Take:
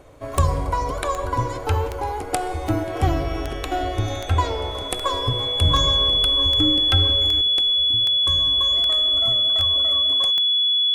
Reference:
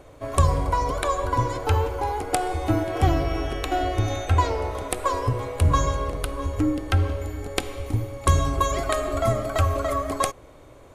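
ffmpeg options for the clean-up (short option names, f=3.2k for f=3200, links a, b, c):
-af "adeclick=t=4,bandreject=f=3.4k:w=30,asetnsamples=n=441:p=0,asendcmd='7.41 volume volume 11.5dB',volume=0dB"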